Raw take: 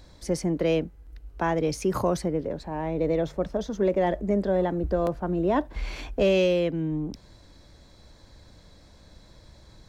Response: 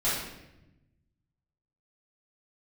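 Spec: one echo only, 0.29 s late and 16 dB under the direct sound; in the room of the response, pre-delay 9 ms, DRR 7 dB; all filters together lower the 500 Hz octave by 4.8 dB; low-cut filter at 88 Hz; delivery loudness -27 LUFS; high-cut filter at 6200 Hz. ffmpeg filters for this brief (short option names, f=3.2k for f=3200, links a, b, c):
-filter_complex "[0:a]highpass=88,lowpass=6.2k,equalizer=f=500:t=o:g=-6,aecho=1:1:290:0.158,asplit=2[a][b];[1:a]atrim=start_sample=2205,adelay=9[c];[b][c]afir=irnorm=-1:irlink=0,volume=-17.5dB[d];[a][d]amix=inputs=2:normalize=0,volume=1.5dB"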